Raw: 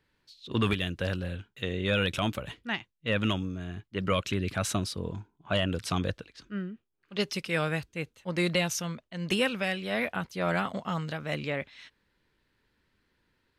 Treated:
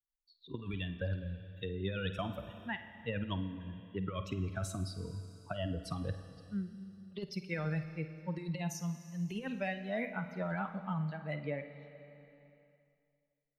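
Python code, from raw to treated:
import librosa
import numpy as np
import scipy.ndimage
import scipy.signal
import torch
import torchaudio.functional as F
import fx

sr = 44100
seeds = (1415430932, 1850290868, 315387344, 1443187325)

y = fx.bin_expand(x, sr, power=2.0)
y = fx.high_shelf(y, sr, hz=2000.0, db=-10.0)
y = fx.over_compress(y, sr, threshold_db=-35.0, ratio=-0.5)
y = fx.room_flutter(y, sr, wall_m=8.8, rt60_s=0.22)
y = fx.rev_schroeder(y, sr, rt60_s=2.1, comb_ms=28, drr_db=11.0)
y = fx.band_squash(y, sr, depth_pct=40)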